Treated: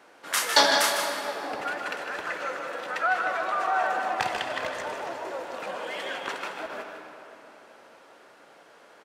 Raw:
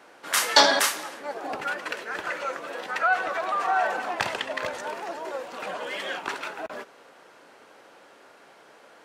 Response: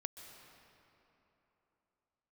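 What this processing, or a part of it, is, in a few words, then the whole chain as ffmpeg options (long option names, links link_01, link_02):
cave: -filter_complex "[0:a]aecho=1:1:154:0.376[link_01];[1:a]atrim=start_sample=2205[link_02];[link_01][link_02]afir=irnorm=-1:irlink=0,volume=1dB"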